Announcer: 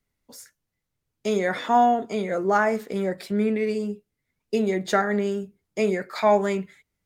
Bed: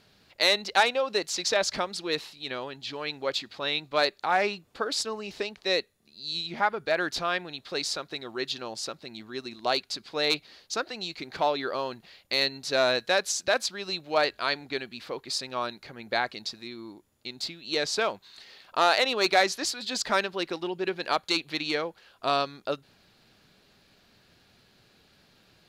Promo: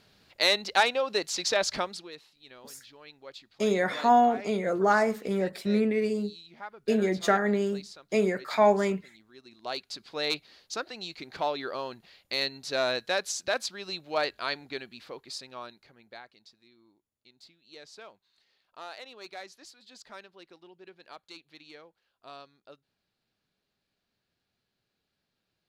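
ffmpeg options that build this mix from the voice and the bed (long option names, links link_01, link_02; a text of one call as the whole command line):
ffmpeg -i stem1.wav -i stem2.wav -filter_complex "[0:a]adelay=2350,volume=-2dB[link_01];[1:a]volume=11.5dB,afade=type=out:start_time=1.83:duration=0.28:silence=0.16788,afade=type=in:start_time=9.39:duration=0.7:silence=0.237137,afade=type=out:start_time=14.56:duration=1.68:silence=0.141254[link_02];[link_01][link_02]amix=inputs=2:normalize=0" out.wav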